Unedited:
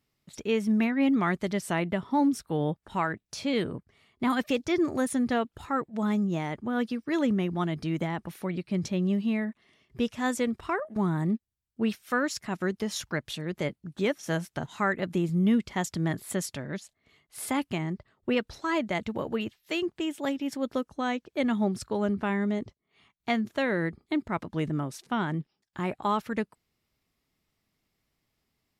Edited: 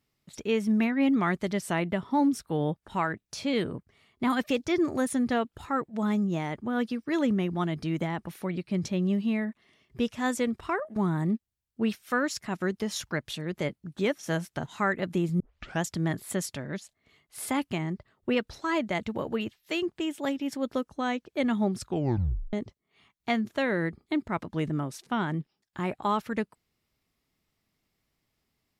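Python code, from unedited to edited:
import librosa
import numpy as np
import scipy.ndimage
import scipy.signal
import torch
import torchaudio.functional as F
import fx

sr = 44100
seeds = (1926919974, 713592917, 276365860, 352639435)

y = fx.edit(x, sr, fx.tape_start(start_s=15.4, length_s=0.43),
    fx.tape_stop(start_s=21.82, length_s=0.71), tone=tone)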